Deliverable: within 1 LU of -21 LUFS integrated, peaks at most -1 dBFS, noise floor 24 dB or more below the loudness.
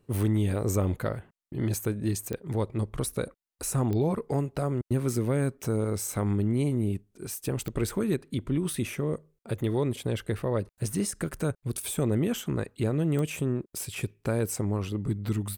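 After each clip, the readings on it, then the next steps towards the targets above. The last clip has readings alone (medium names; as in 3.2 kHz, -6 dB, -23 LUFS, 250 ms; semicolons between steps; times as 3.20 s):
clicks found 4; loudness -29.5 LUFS; peak level -16.0 dBFS; loudness target -21.0 LUFS
-> de-click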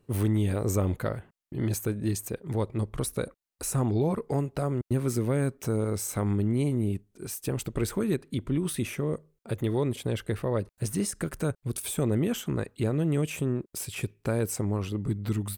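clicks found 0; loudness -29.5 LUFS; peak level -16.0 dBFS; loudness target -21.0 LUFS
-> trim +8.5 dB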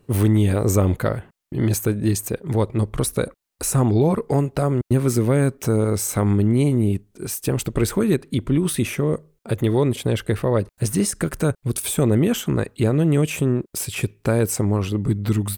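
loudness -21.0 LUFS; peak level -7.5 dBFS; noise floor -66 dBFS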